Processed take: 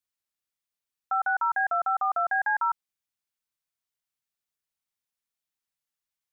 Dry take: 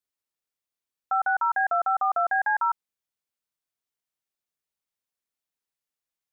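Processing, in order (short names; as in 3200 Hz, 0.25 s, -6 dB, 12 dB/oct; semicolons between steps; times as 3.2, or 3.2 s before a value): bell 430 Hz -6 dB 1.7 oct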